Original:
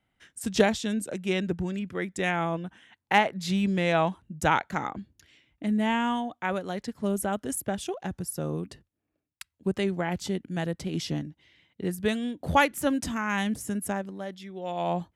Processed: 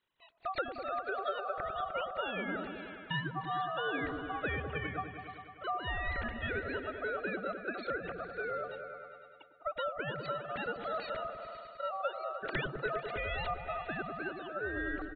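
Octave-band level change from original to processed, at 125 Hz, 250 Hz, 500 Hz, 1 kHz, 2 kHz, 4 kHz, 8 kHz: -11.5 dB, -15.5 dB, -7.5 dB, -7.0 dB, -5.0 dB, -8.5 dB, under -40 dB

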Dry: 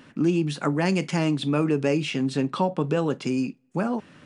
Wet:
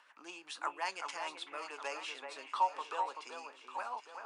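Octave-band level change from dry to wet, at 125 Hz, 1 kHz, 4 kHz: under -40 dB, -3.5 dB, -10.0 dB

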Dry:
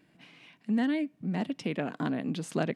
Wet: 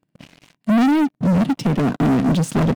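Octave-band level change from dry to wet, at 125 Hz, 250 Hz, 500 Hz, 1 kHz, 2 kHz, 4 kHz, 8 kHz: +17.0 dB, +13.5 dB, +10.5 dB, +14.5 dB, +9.0 dB, +10.0 dB, no reading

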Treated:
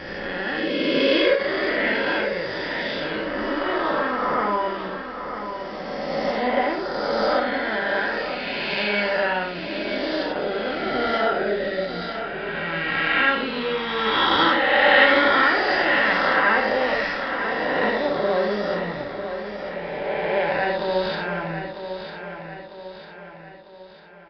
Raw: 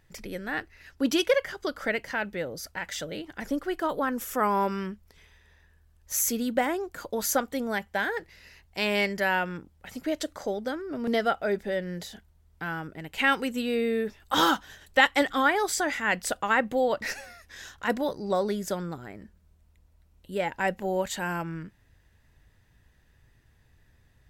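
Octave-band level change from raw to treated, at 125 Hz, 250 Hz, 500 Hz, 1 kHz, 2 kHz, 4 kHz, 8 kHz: +3.0 dB, +3.5 dB, +7.0 dB, +6.5 dB, +8.5 dB, +8.0 dB, under -20 dB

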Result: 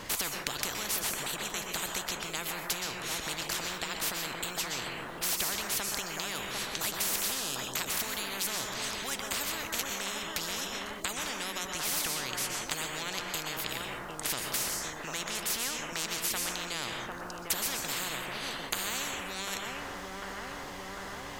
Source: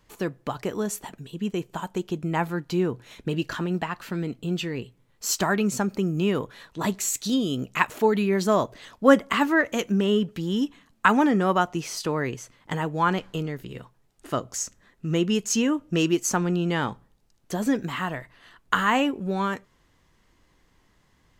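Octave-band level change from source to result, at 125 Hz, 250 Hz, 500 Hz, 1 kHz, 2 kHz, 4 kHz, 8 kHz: -17.0 dB, -19.5 dB, -15.0 dB, -10.5 dB, -5.5 dB, +2.0 dB, +1.0 dB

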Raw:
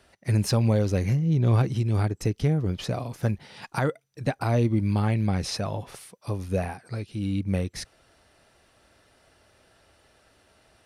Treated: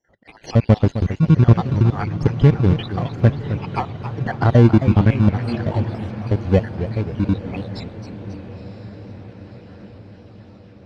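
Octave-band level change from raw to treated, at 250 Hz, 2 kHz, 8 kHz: +8.5 dB, +5.5 dB, under -10 dB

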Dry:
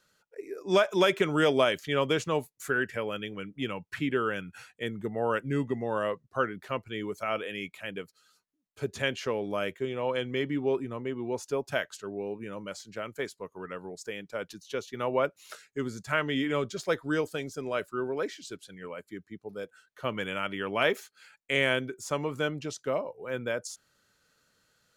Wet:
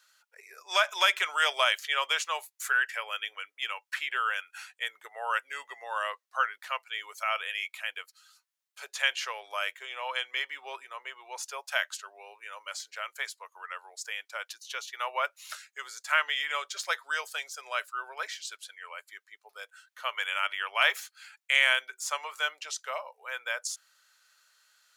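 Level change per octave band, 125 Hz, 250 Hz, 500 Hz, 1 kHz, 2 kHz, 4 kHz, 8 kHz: under -40 dB, under -30 dB, -12.0 dB, +2.5 dB, +4.5 dB, +5.5 dB, +6.0 dB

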